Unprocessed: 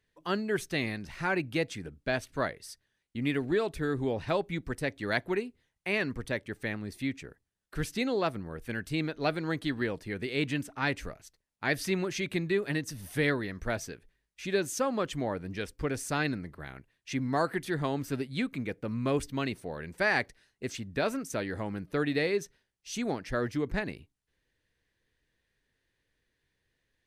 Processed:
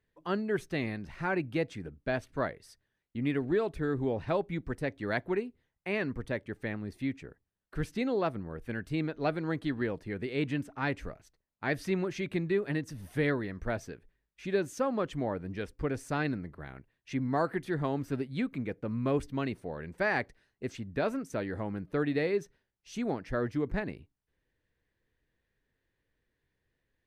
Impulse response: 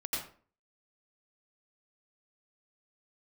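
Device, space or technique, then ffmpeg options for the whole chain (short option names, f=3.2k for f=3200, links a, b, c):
through cloth: -af "highshelf=f=2.7k:g=-12"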